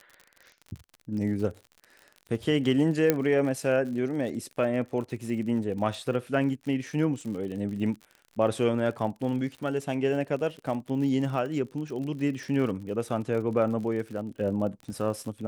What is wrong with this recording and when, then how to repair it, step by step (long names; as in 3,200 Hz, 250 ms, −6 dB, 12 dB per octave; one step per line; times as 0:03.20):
surface crackle 55 per second −36 dBFS
0:03.10: click −8 dBFS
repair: click removal